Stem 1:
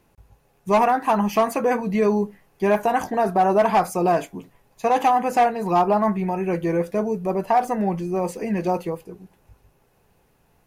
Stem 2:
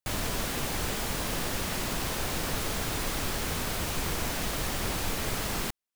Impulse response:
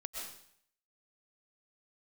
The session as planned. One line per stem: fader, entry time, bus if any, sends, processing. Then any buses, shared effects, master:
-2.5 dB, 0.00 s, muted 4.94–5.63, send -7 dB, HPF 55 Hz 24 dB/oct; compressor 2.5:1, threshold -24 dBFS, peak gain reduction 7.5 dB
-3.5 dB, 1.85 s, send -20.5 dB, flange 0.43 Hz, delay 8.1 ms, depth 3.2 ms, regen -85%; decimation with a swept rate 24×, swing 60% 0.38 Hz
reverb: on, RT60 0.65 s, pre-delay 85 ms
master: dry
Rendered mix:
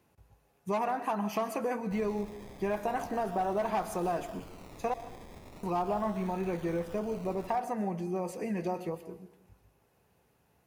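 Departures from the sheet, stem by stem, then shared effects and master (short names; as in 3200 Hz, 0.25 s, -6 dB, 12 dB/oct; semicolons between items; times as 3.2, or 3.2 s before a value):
stem 1 -2.5 dB -> -9.0 dB; stem 2 -3.5 dB -> -14.0 dB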